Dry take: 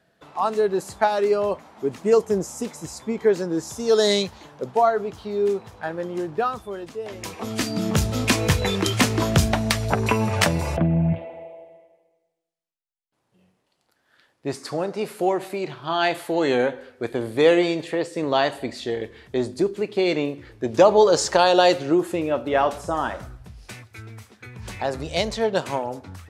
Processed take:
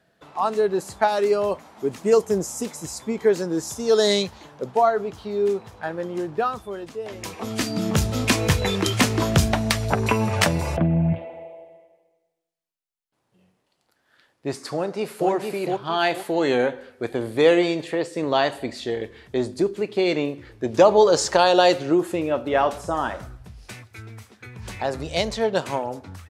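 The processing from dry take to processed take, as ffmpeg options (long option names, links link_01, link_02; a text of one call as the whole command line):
ffmpeg -i in.wav -filter_complex "[0:a]asettb=1/sr,asplit=3[link_01][link_02][link_03];[link_01]atrim=end=1.084[link_04];[link_02]atrim=start=1.08:end=3.74,asetpts=PTS-STARTPTS,afade=type=in:duration=0.004:curve=qsin,afade=type=out:start_time=2.656:duration=0.004:curve=qsin,highshelf=frequency=5300:gain=6[link_05];[link_03]atrim=start=3.736[link_06];[link_04][link_05]acrossfade=duration=0.004:curve1=hsin:curve2=qsin[link_07];[link_07][link_06]acrossfade=duration=0.004:curve1=qsin:curve2=hsin,asplit=2[link_08][link_09];[link_09]afade=type=in:start_time=14.74:duration=0.01,afade=type=out:start_time=15.3:duration=0.01,aecho=0:1:460|920|1380|1840:0.630957|0.189287|0.0567862|0.0170358[link_10];[link_08][link_10]amix=inputs=2:normalize=0" out.wav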